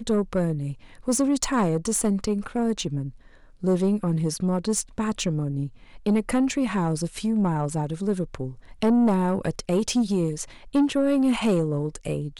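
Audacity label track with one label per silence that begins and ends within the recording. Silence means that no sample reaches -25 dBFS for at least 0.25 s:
0.710000	1.080000	silence
3.060000	3.640000	silence
5.660000	6.060000	silence
8.480000	8.820000	silence
10.430000	10.750000	silence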